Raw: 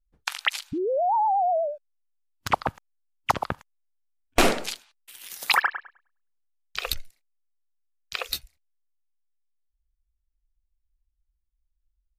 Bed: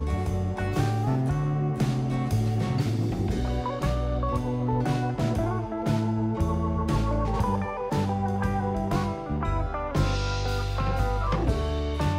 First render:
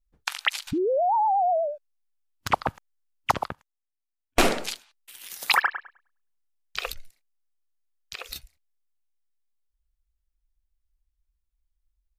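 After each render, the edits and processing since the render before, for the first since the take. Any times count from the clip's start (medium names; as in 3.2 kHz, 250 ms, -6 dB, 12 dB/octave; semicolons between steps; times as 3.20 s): 0.67–1.54 s: level flattener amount 50%; 3.48–4.51 s: upward expansion, over -37 dBFS; 6.91–8.36 s: compression, threshold -32 dBFS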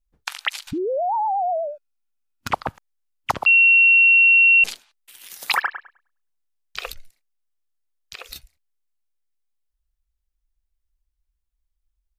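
1.67–2.49 s: small resonant body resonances 230/1400/2500 Hz, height 10 dB; 3.46–4.64 s: bleep 2.73 kHz -10 dBFS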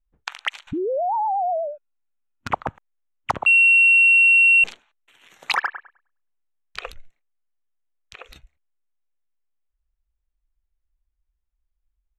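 local Wiener filter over 9 samples; low-pass 8.6 kHz 12 dB/octave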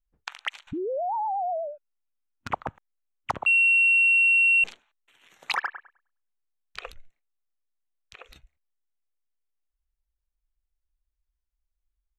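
trim -5.5 dB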